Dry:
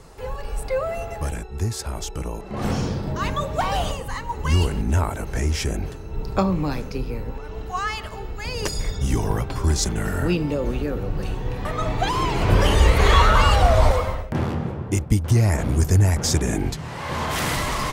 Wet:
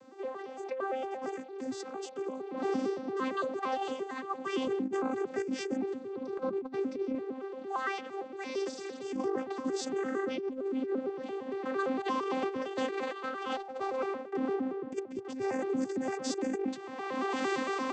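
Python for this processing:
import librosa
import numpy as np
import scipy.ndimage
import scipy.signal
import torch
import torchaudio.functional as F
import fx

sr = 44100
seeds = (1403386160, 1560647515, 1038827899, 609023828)

y = fx.vocoder_arp(x, sr, chord='bare fifth', root=60, every_ms=114)
y = fx.low_shelf(y, sr, hz=300.0, db=8.5, at=(4.67, 7.15))
y = fx.over_compress(y, sr, threshold_db=-24.0, ratio=-0.5)
y = y * librosa.db_to_amplitude(-7.5)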